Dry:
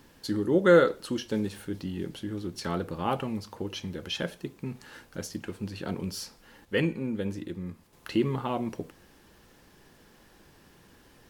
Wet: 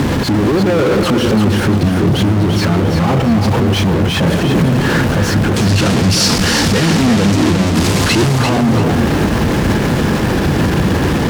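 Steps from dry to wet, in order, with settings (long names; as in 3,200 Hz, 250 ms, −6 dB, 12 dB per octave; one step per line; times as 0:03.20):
sign of each sample alone
high-pass filter 100 Hz 12 dB per octave
RIAA equalisation playback
mains-hum notches 60/120/180 Hz
0:05.56–0:08.29: parametric band 6,500 Hz +13 dB 2.7 octaves
boost into a limiter +26.5 dB
feedback echo at a low word length 342 ms, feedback 35%, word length 6 bits, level −6 dB
level −7.5 dB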